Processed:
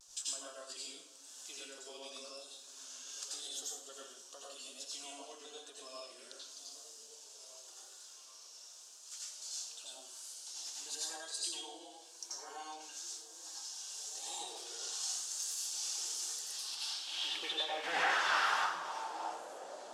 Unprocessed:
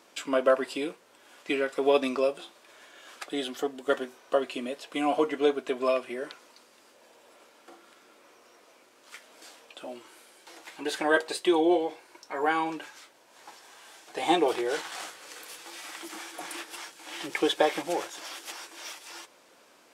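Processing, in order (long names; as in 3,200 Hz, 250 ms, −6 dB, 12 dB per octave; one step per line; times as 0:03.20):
downward compressor 2 to 1, threshold −44 dBFS, peak gain reduction 14.5 dB
0:16.24–0:16.70: ring modulation 1,800 Hz → 480 Hz
parametric band 2,100 Hz −14.5 dB 0.73 octaves
0:17.84–0:18.56: mid-hump overdrive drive 31 dB, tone 3,900 Hz, clips at −28.5 dBFS
band-pass filter sweep 6,400 Hz → 610 Hz, 0:16.27–0:19.55
pitch vibrato 0.93 Hz 66 cents
echo through a band-pass that steps 782 ms, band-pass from 180 Hz, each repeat 1.4 octaves, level −7.5 dB
convolution reverb, pre-delay 81 ms, DRR −5 dB
level +9.5 dB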